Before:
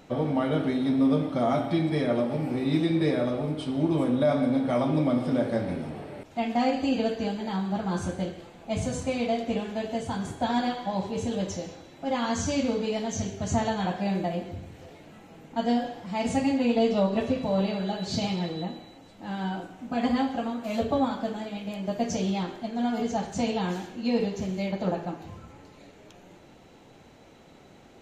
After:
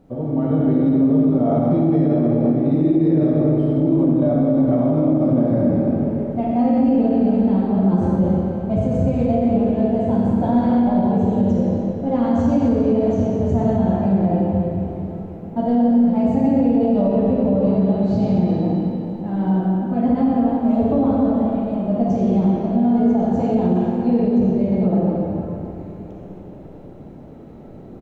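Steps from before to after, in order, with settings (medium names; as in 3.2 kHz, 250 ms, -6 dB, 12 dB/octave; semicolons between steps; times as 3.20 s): tilt shelf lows +9 dB, about 870 Hz; speakerphone echo 220 ms, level -19 dB; level rider gain up to 9 dB; bit crusher 10-bit; reverberation RT60 3.1 s, pre-delay 10 ms, DRR -3.5 dB; peak limiter -2.5 dBFS, peak gain reduction 7.5 dB; treble shelf 2.1 kHz -12 dB; trim -6 dB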